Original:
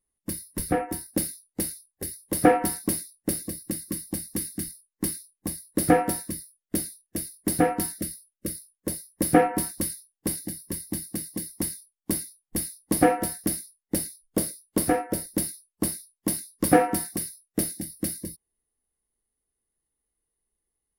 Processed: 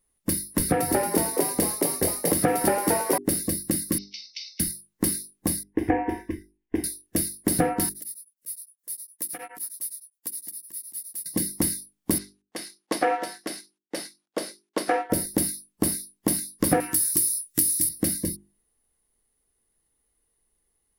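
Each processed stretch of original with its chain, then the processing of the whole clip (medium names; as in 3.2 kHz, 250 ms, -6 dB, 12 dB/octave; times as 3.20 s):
0.51–3.18 s: frequency-shifting echo 226 ms, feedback 52%, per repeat +85 Hz, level -3 dB + three bands compressed up and down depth 40%
3.98–4.60 s: Chebyshev band-pass 2.2–5.9 kHz, order 5 + doubling 45 ms -12.5 dB
5.63–6.84 s: distance through air 270 m + static phaser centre 870 Hz, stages 8
7.89–11.26 s: pre-emphasis filter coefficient 0.97 + compression 2:1, threshold -44 dBFS + tremolo of two beating tones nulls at 9.7 Hz
12.18–15.10 s: companding laws mixed up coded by A + tremolo triangle 4.4 Hz, depth 45% + band-pass 520–5300 Hz
16.80–17.89 s: FFT filter 140 Hz 0 dB, 220 Hz -13 dB, 350 Hz -2 dB, 570 Hz -26 dB, 1.1 kHz -5 dB, 8.1 kHz +15 dB + compression 2:1, threshold -29 dBFS + doubling 22 ms -8 dB
whole clip: compression 5:1, threshold -28 dBFS; hum notches 50/100/150/200/250/300/350/400 Hz; trim +9 dB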